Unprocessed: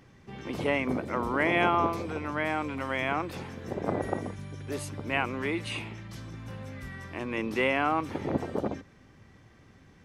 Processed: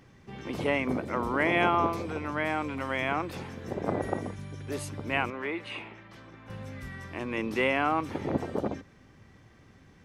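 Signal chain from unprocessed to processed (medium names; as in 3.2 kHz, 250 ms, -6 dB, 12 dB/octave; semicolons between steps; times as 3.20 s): 5.30–6.50 s: tone controls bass -13 dB, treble -15 dB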